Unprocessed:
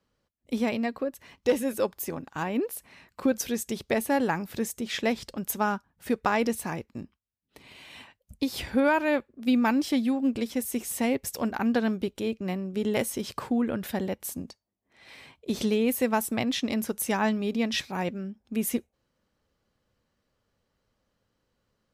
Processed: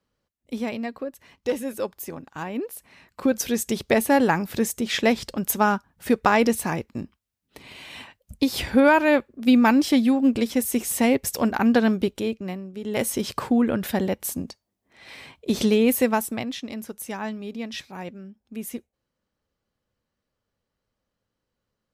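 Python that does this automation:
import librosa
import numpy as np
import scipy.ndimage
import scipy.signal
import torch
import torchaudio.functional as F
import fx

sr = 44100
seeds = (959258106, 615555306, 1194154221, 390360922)

y = fx.gain(x, sr, db=fx.line((2.72, -1.5), (3.68, 6.5), (12.08, 6.5), (12.81, -6.0), (13.07, 6.0), (15.99, 6.0), (16.62, -5.5)))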